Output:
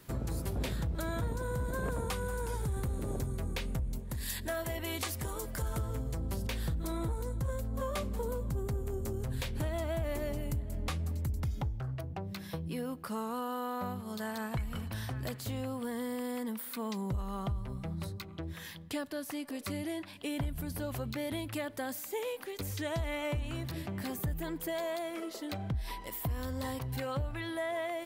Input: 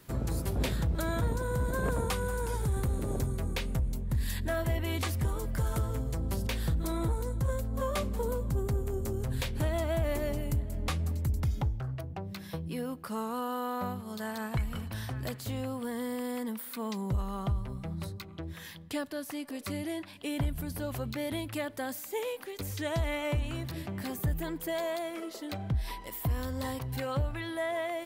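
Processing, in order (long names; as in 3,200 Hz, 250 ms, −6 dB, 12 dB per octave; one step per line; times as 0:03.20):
0:03.99–0:05.62: bass and treble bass −8 dB, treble +5 dB
downward compressor 2 to 1, threshold −34 dBFS, peak gain reduction 5 dB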